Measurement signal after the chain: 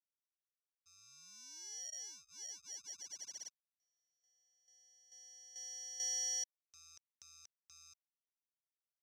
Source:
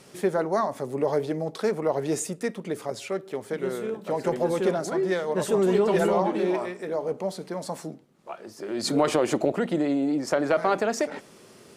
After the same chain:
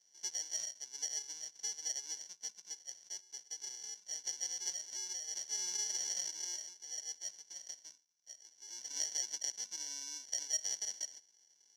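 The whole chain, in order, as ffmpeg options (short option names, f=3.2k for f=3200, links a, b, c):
-af "aeval=exprs='if(lt(val(0),0),0.708*val(0),val(0))':c=same,acrusher=samples=35:mix=1:aa=0.000001,bandpass=f=5.8k:t=q:w=17:csg=0,volume=9dB"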